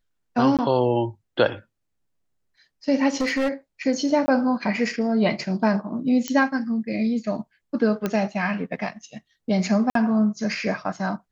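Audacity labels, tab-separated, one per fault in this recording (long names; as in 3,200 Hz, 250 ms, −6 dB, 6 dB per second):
0.570000	0.590000	drop-out 17 ms
3.200000	3.500000	clipping −19 dBFS
4.260000	4.280000	drop-out 20 ms
6.280000	6.280000	click −10 dBFS
8.060000	8.060000	click −11 dBFS
9.900000	9.950000	drop-out 53 ms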